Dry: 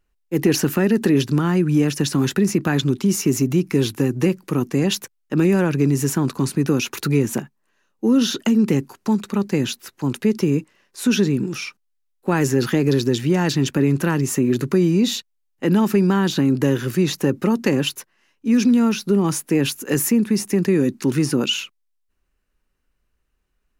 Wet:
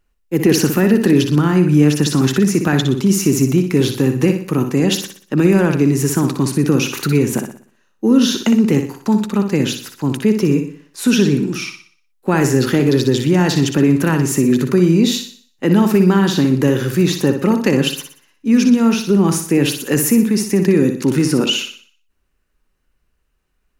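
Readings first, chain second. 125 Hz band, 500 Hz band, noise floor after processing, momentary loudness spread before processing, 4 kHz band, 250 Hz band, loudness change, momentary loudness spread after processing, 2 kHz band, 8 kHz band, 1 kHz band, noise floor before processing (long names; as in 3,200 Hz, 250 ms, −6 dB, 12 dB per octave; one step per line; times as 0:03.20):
+4.5 dB, +4.5 dB, −65 dBFS, 7 LU, +4.5 dB, +4.5 dB, +4.5 dB, 8 LU, +4.5 dB, +4.5 dB, +4.0 dB, −70 dBFS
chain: flutter between parallel walls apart 10.4 metres, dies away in 0.48 s
level +3.5 dB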